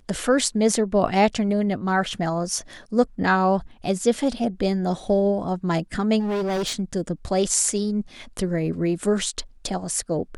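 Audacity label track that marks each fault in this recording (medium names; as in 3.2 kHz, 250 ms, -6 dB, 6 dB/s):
6.190000	6.740000	clipped -22 dBFS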